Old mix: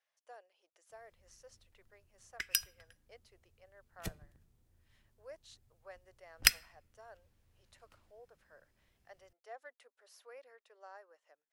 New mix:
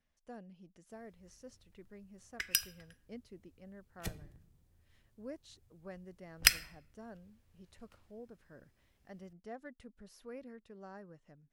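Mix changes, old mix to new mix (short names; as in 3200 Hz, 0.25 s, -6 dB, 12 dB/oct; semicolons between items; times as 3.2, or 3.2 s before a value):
speech: remove inverse Chebyshev high-pass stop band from 210 Hz, stop band 50 dB; background: send +9.5 dB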